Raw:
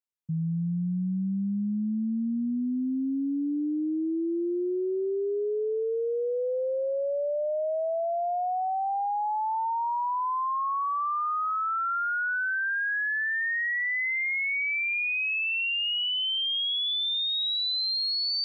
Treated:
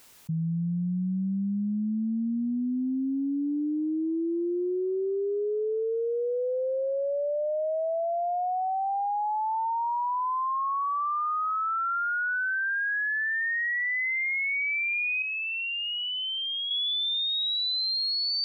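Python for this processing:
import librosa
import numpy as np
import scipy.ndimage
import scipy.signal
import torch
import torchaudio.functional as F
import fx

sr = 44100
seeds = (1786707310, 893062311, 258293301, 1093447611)

y = fx.peak_eq(x, sr, hz=2700.0, db=-11.5, octaves=2.3, at=(15.22, 16.71))
y = fx.env_flatten(y, sr, amount_pct=70)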